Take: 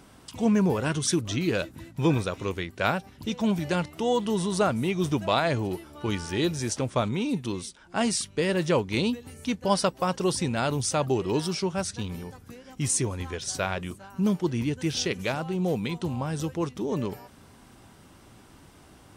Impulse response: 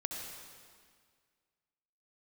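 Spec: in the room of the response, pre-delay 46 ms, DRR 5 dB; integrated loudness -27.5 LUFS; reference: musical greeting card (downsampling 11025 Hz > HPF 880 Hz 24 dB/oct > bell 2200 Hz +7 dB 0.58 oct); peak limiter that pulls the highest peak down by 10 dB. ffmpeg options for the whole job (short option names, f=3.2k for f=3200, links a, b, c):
-filter_complex "[0:a]alimiter=limit=-17.5dB:level=0:latency=1,asplit=2[a][b];[1:a]atrim=start_sample=2205,adelay=46[c];[b][c]afir=irnorm=-1:irlink=0,volume=-6.5dB[d];[a][d]amix=inputs=2:normalize=0,aresample=11025,aresample=44100,highpass=f=880:w=0.5412,highpass=f=880:w=1.3066,equalizer=f=2.2k:t=o:w=0.58:g=7,volume=6dB"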